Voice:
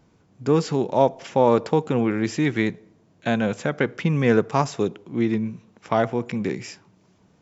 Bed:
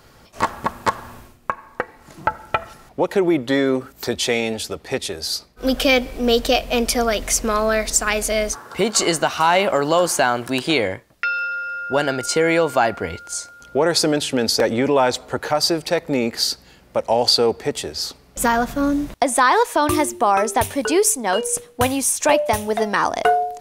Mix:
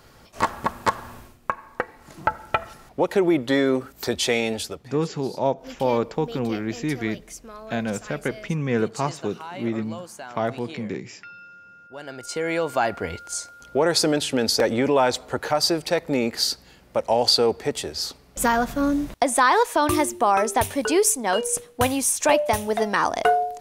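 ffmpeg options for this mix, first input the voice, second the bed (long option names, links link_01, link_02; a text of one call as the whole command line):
ffmpeg -i stem1.wav -i stem2.wav -filter_complex "[0:a]adelay=4450,volume=-4.5dB[link_01];[1:a]volume=16.5dB,afade=type=out:start_time=4.59:duration=0.35:silence=0.112202,afade=type=in:start_time=11.95:duration=1.19:silence=0.11885[link_02];[link_01][link_02]amix=inputs=2:normalize=0" out.wav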